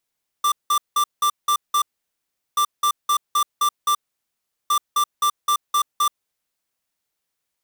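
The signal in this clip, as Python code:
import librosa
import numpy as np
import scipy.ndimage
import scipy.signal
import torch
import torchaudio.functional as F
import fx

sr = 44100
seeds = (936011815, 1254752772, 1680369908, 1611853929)

y = fx.beep_pattern(sr, wave='square', hz=1180.0, on_s=0.08, off_s=0.18, beeps=6, pause_s=0.75, groups=3, level_db=-18.0)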